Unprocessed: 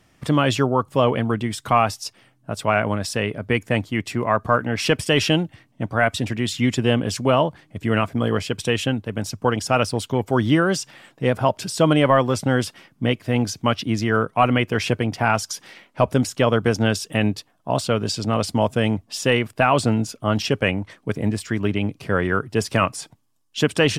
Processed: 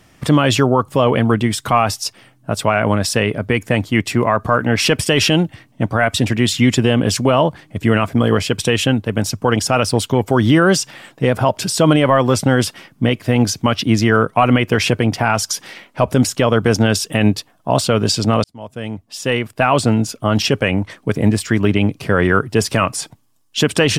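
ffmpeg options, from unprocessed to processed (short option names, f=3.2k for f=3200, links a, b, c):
-filter_complex "[0:a]asplit=2[a][b];[a]atrim=end=18.44,asetpts=PTS-STARTPTS,afade=t=out:st=18.436:d=0.004:c=hsin[c];[b]atrim=start=18.44,asetpts=PTS-STARTPTS,afade=t=in:d=2.11[d];[c][d]concat=n=2:v=0:a=1,highshelf=f=12k:g=3.5,alimiter=limit=-10.5dB:level=0:latency=1:release=53,volume=8dB"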